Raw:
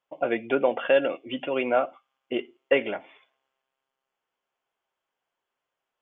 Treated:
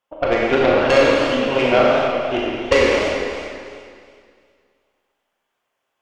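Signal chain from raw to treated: added harmonics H 4 -9 dB, 6 -10 dB, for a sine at -8 dBFS; Schroeder reverb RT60 2.1 s, combs from 28 ms, DRR -3.5 dB; warbling echo 99 ms, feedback 65%, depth 209 cents, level -8.5 dB; gain +3.5 dB

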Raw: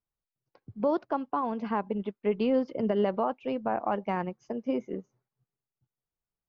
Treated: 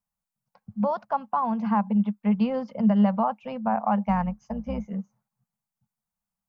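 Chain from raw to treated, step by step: 4.06–4.88 octaver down 2 oct, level -4 dB; EQ curve 130 Hz 0 dB, 210 Hz +13 dB, 330 Hz -25 dB, 480 Hz -4 dB, 840 Hz +7 dB, 1700 Hz +1 dB, 3600 Hz -2 dB, 7800 Hz +5 dB

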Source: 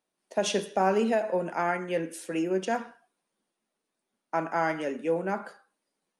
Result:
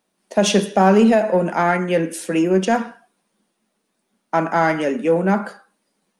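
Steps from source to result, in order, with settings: in parallel at -6 dB: soft clip -25 dBFS, distortion -11 dB; on the sum: bell 200 Hz +8 dB 0.42 oct; gain +7.5 dB

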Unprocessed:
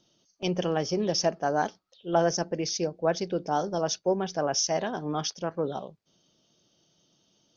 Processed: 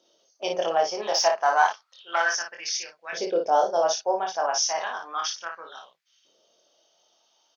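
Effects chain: 0.97–2.33 overdrive pedal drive 11 dB, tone 4900 Hz, clips at -11 dBFS; LFO high-pass saw up 0.32 Hz 480–2100 Hz; early reflections 24 ms -3.5 dB, 56 ms -5.5 dB

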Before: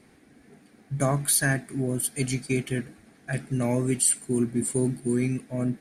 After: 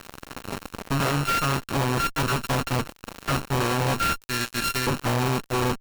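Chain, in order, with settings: sample sorter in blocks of 32 samples; 4.16–4.87 steep high-pass 1600 Hz 36 dB/oct; compressor 3:1, threshold -43 dBFS, peak gain reduction 18 dB; added harmonics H 6 -6 dB, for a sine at -23 dBFS; fuzz box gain 47 dB, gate -51 dBFS; gain -7.5 dB

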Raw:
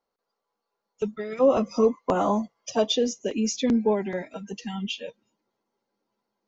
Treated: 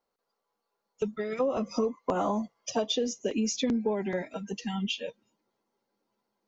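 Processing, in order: compressor 12:1, threshold -24 dBFS, peak gain reduction 10.5 dB

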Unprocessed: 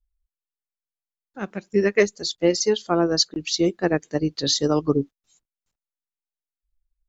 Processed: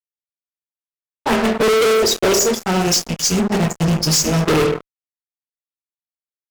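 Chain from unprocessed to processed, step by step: rattling part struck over -32 dBFS, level -21 dBFS; low-pass opened by the level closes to 1200 Hz, open at -18.5 dBFS; thirty-one-band EQ 160 Hz -7 dB, 250 Hz -4 dB, 800 Hz +7 dB, 4000 Hz -11 dB; in parallel at -1.5 dB: vocal rider 0.5 s; on the sum: spectral gain 2.54–4.86, 270–4000 Hz -17 dB; envelope flanger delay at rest 11.3 ms, full sweep at -9.5 dBFS; on a send at -1.5 dB: reverb RT60 0.60 s, pre-delay 3 ms; on the sum: speed mistake 44.1 kHz file played as 48 kHz; fuzz box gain 33 dB, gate -38 dBFS

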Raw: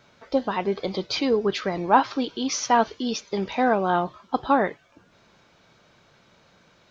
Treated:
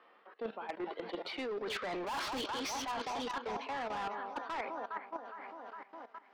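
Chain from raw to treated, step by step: speed glide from 77% -> 141%; Doppler pass-by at 2.29, 15 m/s, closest 1.7 m; steep high-pass 200 Hz 48 dB/oct; low shelf 270 Hz -5.5 dB; on a send: echo with dull and thin repeats by turns 0.205 s, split 920 Hz, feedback 69%, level -11.5 dB; on the sum: low-pass opened by the level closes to 1900 Hz, open at -26.5 dBFS; level quantiser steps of 16 dB; overdrive pedal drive 34 dB, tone 4800 Hz, clips at -22 dBFS; reverse; compressor 8:1, threshold -45 dBFS, peak gain reduction 17.5 dB; reverse; gain +7.5 dB

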